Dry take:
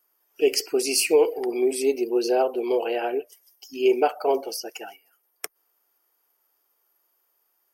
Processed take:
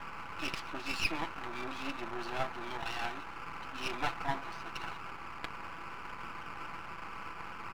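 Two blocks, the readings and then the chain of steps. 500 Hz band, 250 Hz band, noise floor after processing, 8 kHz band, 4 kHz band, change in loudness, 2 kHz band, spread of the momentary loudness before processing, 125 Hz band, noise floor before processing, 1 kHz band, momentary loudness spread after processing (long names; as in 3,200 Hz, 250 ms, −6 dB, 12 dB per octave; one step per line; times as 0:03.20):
−24.0 dB, −15.5 dB, −45 dBFS, −22.0 dB, −10.0 dB, −16.0 dB, −2.5 dB, 18 LU, can't be measured, −72 dBFS, −6.5 dB, 9 LU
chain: Butterworth low-pass 3,700 Hz 48 dB per octave
noise in a band 680–1,500 Hz −40 dBFS
Chebyshev band-stop filter 240–940 Hz, order 2
comb filter 6 ms, depth 51%
half-wave rectification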